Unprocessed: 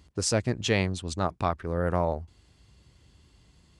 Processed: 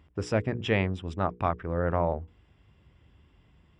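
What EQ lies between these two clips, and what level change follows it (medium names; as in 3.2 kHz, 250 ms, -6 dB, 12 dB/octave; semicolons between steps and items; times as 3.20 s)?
Savitzky-Golay filter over 25 samples; hum notches 60/120/180/240/300/360/420/480 Hz; 0.0 dB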